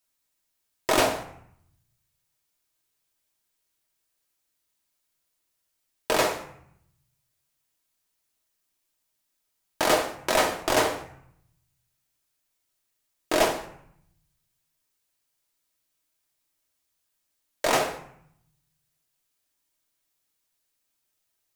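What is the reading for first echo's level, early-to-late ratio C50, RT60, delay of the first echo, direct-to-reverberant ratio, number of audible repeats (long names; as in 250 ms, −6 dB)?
no echo audible, 10.5 dB, 0.70 s, no echo audible, 3.0 dB, no echo audible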